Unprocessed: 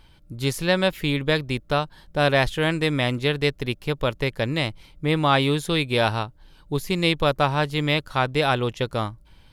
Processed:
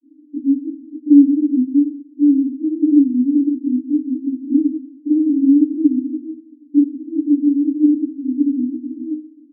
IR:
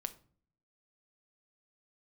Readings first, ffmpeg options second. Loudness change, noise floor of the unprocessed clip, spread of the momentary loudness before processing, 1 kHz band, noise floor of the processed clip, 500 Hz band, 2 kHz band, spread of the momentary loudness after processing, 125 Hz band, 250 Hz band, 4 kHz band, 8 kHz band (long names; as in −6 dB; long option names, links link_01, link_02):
+6.5 dB, −53 dBFS, 9 LU, below −40 dB, −47 dBFS, can't be measured, below −40 dB, 14 LU, below −25 dB, +14.5 dB, below −40 dB, below −40 dB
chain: -filter_complex "[0:a]aeval=exprs='0.562*sin(PI/2*7.94*val(0)/0.562)':channel_layout=same,asuperpass=centerf=280:order=20:qfactor=3.8,aecho=1:1:131:0.126,asplit=2[link_01][link_02];[1:a]atrim=start_sample=2205,lowpass=frequency=1000:poles=1,adelay=21[link_03];[link_02][link_03]afir=irnorm=-1:irlink=0,volume=8dB[link_04];[link_01][link_04]amix=inputs=2:normalize=0,volume=-3dB"